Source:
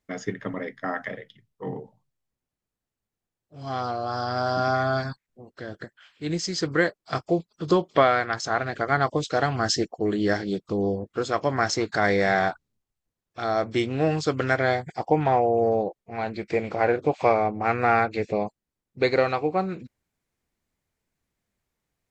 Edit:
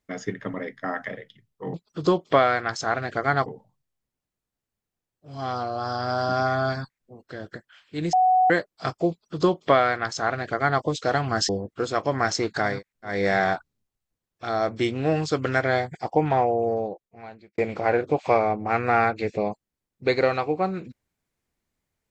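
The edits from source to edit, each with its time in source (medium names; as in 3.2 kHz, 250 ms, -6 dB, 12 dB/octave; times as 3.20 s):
5.05–5.48 s: copy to 12.09 s, crossfade 0.24 s
6.41–6.78 s: bleep 742 Hz -15 dBFS
7.38–9.10 s: copy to 1.74 s
9.77–10.87 s: delete
15.30–16.53 s: fade out linear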